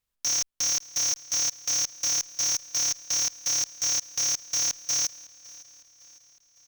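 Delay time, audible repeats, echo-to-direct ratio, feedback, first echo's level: 557 ms, 3, -19.5 dB, 52%, -21.0 dB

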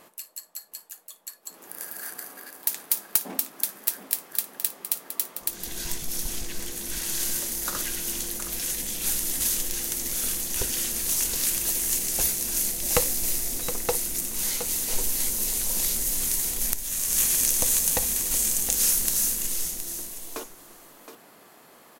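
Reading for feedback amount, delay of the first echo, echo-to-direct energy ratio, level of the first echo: no regular repeats, 56 ms, -10.0 dB, -19.0 dB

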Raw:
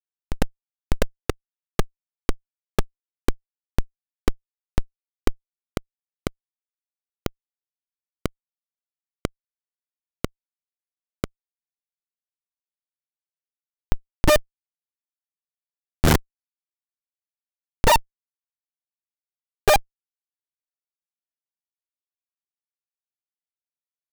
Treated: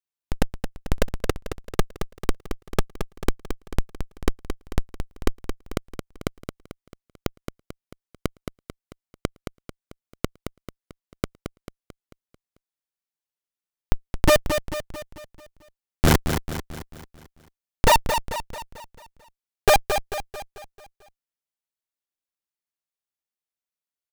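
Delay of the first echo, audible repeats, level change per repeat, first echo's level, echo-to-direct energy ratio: 221 ms, 5, -6.0 dB, -8.0 dB, -7.0 dB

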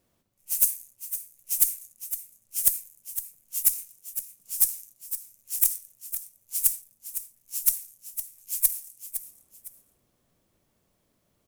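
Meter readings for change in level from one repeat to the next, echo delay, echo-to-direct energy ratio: -11.0 dB, 509 ms, -10.5 dB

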